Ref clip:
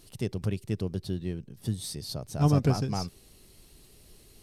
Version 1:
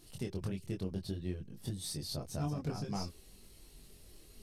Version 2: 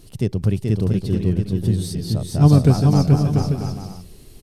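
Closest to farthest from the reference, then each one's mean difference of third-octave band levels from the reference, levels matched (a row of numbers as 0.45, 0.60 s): 1, 2; 5.5, 7.5 dB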